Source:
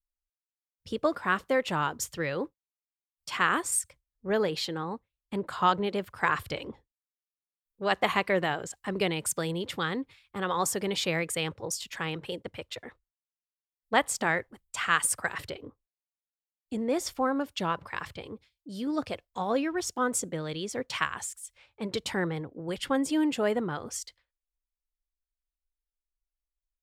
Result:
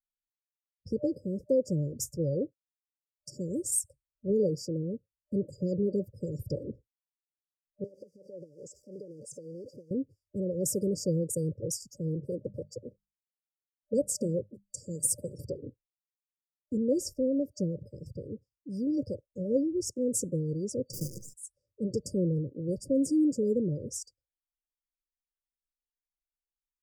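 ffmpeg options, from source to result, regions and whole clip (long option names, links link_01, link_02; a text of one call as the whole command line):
ffmpeg -i in.wav -filter_complex "[0:a]asettb=1/sr,asplit=3[link_01][link_02][link_03];[link_01]atrim=end=7.844[link_04];[link_02]atrim=start=7.84:end=9.91,asetpts=PTS-STARTPTS,afade=type=in:duration=0.004:curve=qsin,afade=type=out:start_time=2.066:duration=0.004:curve=qsin,aeval=exprs='val(0)+0.5*0.0422*sgn(val(0))':channel_layout=same,bandpass=frequency=1600:width_type=q:width=1.3,acompressor=threshold=-34dB:ratio=16:attack=3.2:release=140:knee=1:detection=peak[link_05];[link_03]atrim=start=9.906[link_06];[link_04][link_05]acrossfade=duration=0.004:curve1=hsin:curve2=qsin[link_07];[link_07][link_06]acrossfade=duration=0.004:curve1=qsin:curve2=hsin,asettb=1/sr,asplit=3[link_08][link_09][link_10];[link_08]atrim=end=12.344[link_11];[link_09]atrim=start=12.34:end=15.62,asetpts=PTS-STARTPTS,afade=type=in:duration=0.004:curve=qsin,afade=type=out:start_time=3.276:duration=0.004:curve=qsin,equalizer=frequency=1200:width=0.43:gain=3.5,bandreject=frequency=50:width_type=h:width=6,bandreject=frequency=100:width_type=h:width=6,bandreject=frequency=150:width_type=h:width=6,bandreject=frequency=200:width_type=h:width=6[link_12];[link_10]atrim=start=15.616[link_13];[link_11][link_12]acrossfade=duration=0.004:curve1=hsin:curve2=qsin[link_14];[link_14][link_13]acrossfade=duration=0.004:curve1=qsin:curve2=hsin,asettb=1/sr,asplit=3[link_15][link_16][link_17];[link_15]atrim=end=20.934[link_18];[link_16]atrim=start=20.93:end=21.34,asetpts=PTS-STARTPTS,afade=type=in:duration=0.004:curve=qsin,afade=type=out:start_time=0.406:duration=0.004:curve=qsin,highshelf=frequency=6000:width_type=q:width=1.5:gain=-8,aecho=1:1:6.1:1,atrim=end_sample=18081,acrusher=bits=6:dc=4:mix=0:aa=0.000001[link_19];[link_17]atrim=start=21.336[link_20];[link_18][link_19]acrossfade=duration=0.004:curve1=hsin:curve2=qsin[link_21];[link_21][link_20]acrossfade=duration=0.004:curve1=qsin:curve2=hsin,afftfilt=real='re*(1-between(b*sr/4096,600,4600))':imag='im*(1-between(b*sr/4096,600,4600))':win_size=4096:overlap=0.75,afftdn=noise_reduction=14:noise_floor=-51,equalizer=frequency=125:width_type=o:width=1:gain=9,equalizer=frequency=1000:width_type=o:width=1:gain=5,equalizer=frequency=4000:width_type=o:width=1:gain=-5" out.wav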